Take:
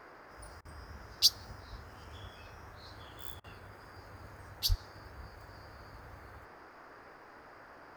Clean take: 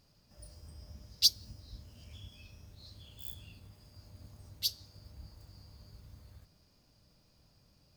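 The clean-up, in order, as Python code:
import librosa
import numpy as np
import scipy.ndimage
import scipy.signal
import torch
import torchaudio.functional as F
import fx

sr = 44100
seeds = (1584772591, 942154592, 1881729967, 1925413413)

y = fx.fix_deplosive(x, sr, at_s=(4.68,))
y = fx.fix_interpolate(y, sr, at_s=(0.61, 3.4), length_ms=40.0)
y = fx.noise_reduce(y, sr, print_start_s=7.1, print_end_s=7.6, reduce_db=13.0)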